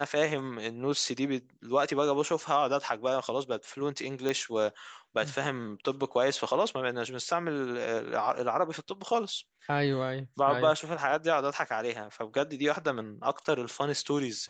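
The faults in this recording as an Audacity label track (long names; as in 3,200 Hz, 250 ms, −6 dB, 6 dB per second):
4.290000	4.290000	click −17 dBFS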